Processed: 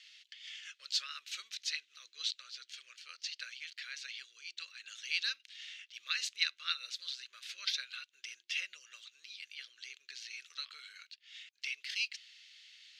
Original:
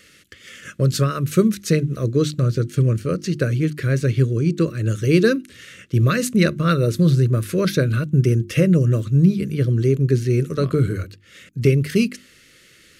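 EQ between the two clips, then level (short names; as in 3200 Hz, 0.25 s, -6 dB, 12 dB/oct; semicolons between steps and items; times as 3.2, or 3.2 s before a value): ladder high-pass 2700 Hz, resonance 25%; air absorption 200 m; +8.0 dB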